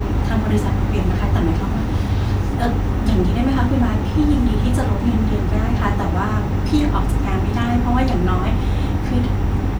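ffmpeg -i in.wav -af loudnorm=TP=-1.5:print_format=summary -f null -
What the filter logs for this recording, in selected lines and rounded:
Input Integrated:    -19.2 LUFS
Input True Peak:      -4.3 dBTP
Input LRA:             1.3 LU
Input Threshold:     -29.2 LUFS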